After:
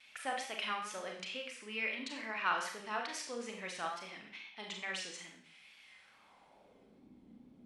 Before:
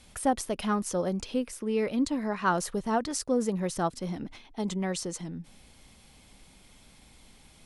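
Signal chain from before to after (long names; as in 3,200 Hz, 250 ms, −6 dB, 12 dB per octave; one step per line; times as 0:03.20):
four-comb reverb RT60 0.57 s, combs from 29 ms, DRR 1.5 dB
pitch vibrato 2.3 Hz 56 cents
band-pass filter sweep 2,400 Hz → 260 Hz, 0:05.86–0:07.10
level +4 dB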